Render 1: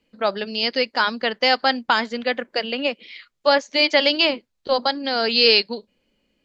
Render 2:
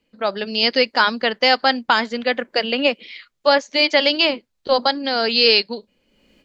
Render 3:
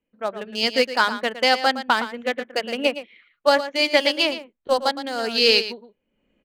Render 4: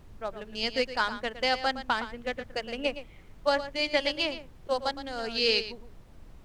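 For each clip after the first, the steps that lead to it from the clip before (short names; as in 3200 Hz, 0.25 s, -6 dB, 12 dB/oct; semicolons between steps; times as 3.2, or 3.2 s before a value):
AGC gain up to 17 dB; gain -1 dB
Wiener smoothing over 9 samples; on a send: echo 0.114 s -8.5 dB; on the sum: upward expander 1.5:1, over -30 dBFS; gain -1 dB
LPF 7900 Hz 12 dB/oct; added noise brown -39 dBFS; gain -8.5 dB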